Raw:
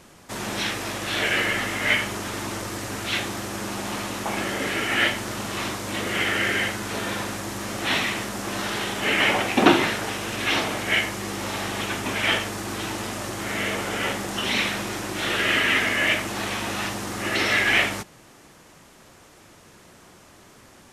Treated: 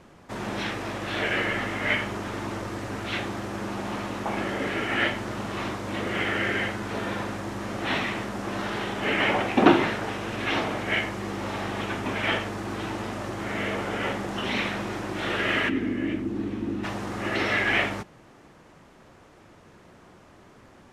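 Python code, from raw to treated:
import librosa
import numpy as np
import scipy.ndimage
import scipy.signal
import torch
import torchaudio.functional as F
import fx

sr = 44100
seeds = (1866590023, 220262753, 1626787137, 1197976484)

y = fx.curve_eq(x, sr, hz=(180.0, 290.0, 620.0), db=(0, 10, -14), at=(15.68, 16.83), fade=0.02)
y = fx.lowpass(y, sr, hz=1600.0, slope=6)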